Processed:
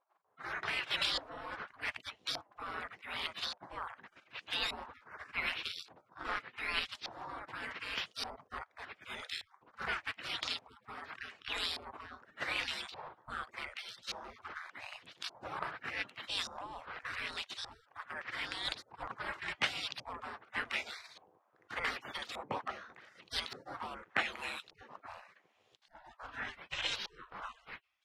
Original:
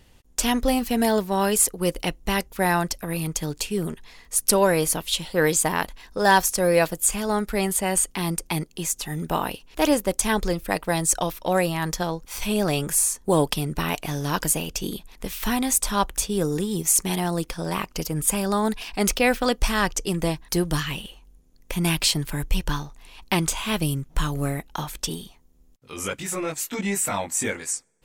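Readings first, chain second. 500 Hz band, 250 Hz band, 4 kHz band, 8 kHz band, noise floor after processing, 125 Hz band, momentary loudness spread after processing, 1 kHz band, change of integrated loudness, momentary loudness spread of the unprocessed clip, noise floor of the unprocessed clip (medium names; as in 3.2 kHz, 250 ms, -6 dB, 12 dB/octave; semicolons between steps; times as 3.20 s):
-25.0 dB, -30.0 dB, -8.5 dB, -31.0 dB, -73 dBFS, -29.5 dB, 14 LU, -16.0 dB, -16.0 dB, 10 LU, -54 dBFS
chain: level rider gain up to 8 dB; spectral gate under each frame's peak -30 dB weak; LFO low-pass saw up 0.85 Hz 780–4300 Hz; trim -1 dB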